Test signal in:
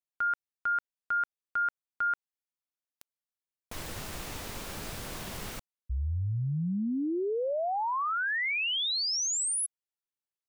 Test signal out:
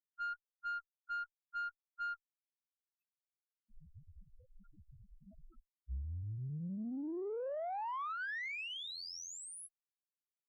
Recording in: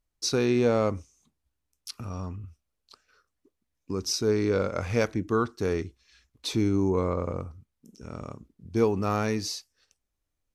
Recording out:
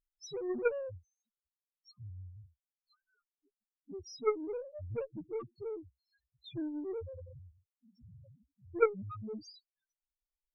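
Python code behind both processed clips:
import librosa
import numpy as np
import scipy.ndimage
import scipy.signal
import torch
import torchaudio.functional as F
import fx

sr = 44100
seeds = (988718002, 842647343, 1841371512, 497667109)

y = fx.dereverb_blind(x, sr, rt60_s=0.87)
y = fx.spec_topn(y, sr, count=1)
y = fx.cheby_harmonics(y, sr, harmonics=(2, 3, 5), levels_db=(-28, -7, -18), full_scale_db=-22.0)
y = y * librosa.db_to_amplitude(8.0)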